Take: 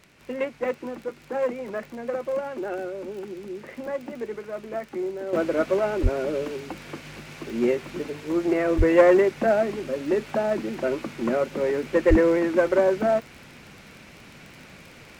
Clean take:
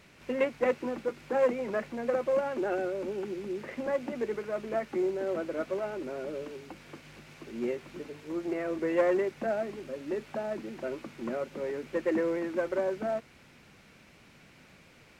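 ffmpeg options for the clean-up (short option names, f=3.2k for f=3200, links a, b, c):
-filter_complex "[0:a]adeclick=t=4,asplit=3[a][b][c];[a]afade=t=out:st=6.02:d=0.02[d];[b]highpass=f=140:w=0.5412,highpass=f=140:w=1.3066,afade=t=in:st=6.02:d=0.02,afade=t=out:st=6.14:d=0.02[e];[c]afade=t=in:st=6.14:d=0.02[f];[d][e][f]amix=inputs=3:normalize=0,asplit=3[g][h][i];[g]afade=t=out:st=8.77:d=0.02[j];[h]highpass=f=140:w=0.5412,highpass=f=140:w=1.3066,afade=t=in:st=8.77:d=0.02,afade=t=out:st=8.89:d=0.02[k];[i]afade=t=in:st=8.89:d=0.02[l];[j][k][l]amix=inputs=3:normalize=0,asplit=3[m][n][o];[m]afade=t=out:st=12.09:d=0.02[p];[n]highpass=f=140:w=0.5412,highpass=f=140:w=1.3066,afade=t=in:st=12.09:d=0.02,afade=t=out:st=12.21:d=0.02[q];[o]afade=t=in:st=12.21:d=0.02[r];[p][q][r]amix=inputs=3:normalize=0,asetnsamples=n=441:p=0,asendcmd='5.33 volume volume -10dB',volume=0dB"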